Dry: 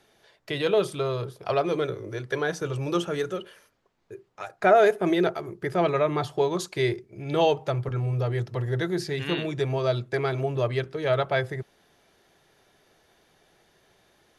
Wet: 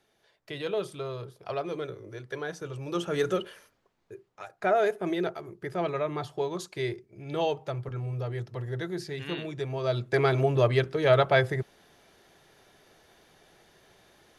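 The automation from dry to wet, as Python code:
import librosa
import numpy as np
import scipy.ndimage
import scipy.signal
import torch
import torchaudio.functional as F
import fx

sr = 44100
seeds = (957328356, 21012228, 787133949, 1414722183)

y = fx.gain(x, sr, db=fx.line((2.85, -8.0), (3.31, 4.0), (4.51, -6.5), (9.73, -6.5), (10.2, 3.0)))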